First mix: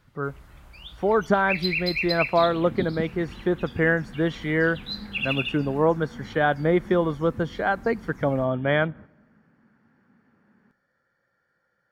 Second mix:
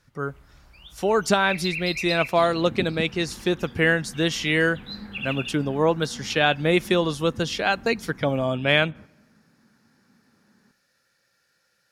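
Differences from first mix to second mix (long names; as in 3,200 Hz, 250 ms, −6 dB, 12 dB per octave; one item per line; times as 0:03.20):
speech: remove Savitzky-Golay smoothing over 41 samples
first sound −4.5 dB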